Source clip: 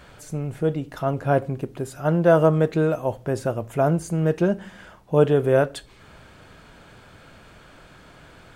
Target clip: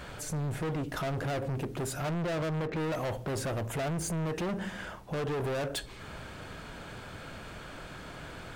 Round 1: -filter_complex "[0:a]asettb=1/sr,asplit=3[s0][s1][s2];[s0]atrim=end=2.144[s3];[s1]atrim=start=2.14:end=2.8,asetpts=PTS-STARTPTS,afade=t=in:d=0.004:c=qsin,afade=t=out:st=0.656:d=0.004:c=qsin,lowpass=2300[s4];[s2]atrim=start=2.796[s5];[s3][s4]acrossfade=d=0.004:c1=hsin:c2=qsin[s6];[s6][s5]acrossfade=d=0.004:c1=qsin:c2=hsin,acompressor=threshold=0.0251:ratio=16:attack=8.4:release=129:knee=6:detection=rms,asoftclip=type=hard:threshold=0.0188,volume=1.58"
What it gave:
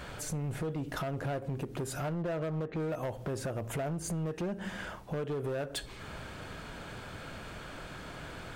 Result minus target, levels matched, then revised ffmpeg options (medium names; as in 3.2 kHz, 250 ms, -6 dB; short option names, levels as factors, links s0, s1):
compression: peak gain reduction +10 dB
-filter_complex "[0:a]asettb=1/sr,asplit=3[s0][s1][s2];[s0]atrim=end=2.144[s3];[s1]atrim=start=2.14:end=2.8,asetpts=PTS-STARTPTS,afade=t=in:d=0.004:c=qsin,afade=t=out:st=0.656:d=0.004:c=qsin,lowpass=2300[s4];[s2]atrim=start=2.796[s5];[s3][s4]acrossfade=d=0.004:c1=hsin:c2=qsin[s6];[s6][s5]acrossfade=d=0.004:c1=qsin:c2=hsin,acompressor=threshold=0.0841:ratio=16:attack=8.4:release=129:knee=6:detection=rms,asoftclip=type=hard:threshold=0.0188,volume=1.58"